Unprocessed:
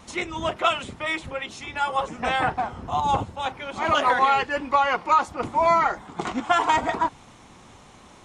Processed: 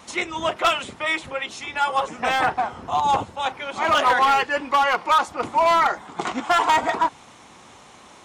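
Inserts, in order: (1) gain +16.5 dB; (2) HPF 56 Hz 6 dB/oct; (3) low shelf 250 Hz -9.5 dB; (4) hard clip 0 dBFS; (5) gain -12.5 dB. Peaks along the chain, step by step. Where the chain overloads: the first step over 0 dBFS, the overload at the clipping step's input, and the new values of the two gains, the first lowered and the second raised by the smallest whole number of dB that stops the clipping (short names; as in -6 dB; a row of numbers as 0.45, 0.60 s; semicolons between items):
+9.5, +9.5, +9.0, 0.0, -12.5 dBFS; step 1, 9.0 dB; step 1 +7.5 dB, step 5 -3.5 dB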